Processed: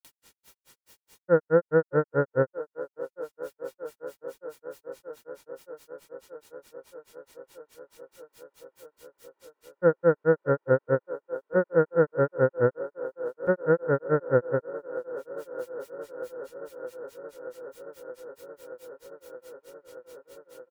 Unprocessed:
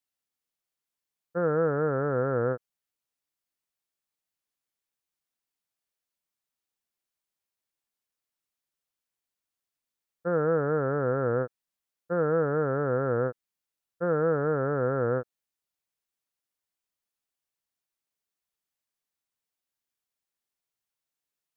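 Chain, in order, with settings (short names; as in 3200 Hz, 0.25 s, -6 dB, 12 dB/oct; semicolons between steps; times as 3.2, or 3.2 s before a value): bell 230 Hz +8 dB 0.77 oct; comb 2.2 ms, depth 53%; in parallel at +1 dB: upward compressor, threshold -24 dBFS; on the sum: grains 0.129 s, grains 4.5/s, pitch spread up and down by 0 st; band-limited delay 0.651 s, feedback 84%, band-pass 670 Hz, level -14 dB; speed mistake 24 fps film run at 25 fps; gain -2 dB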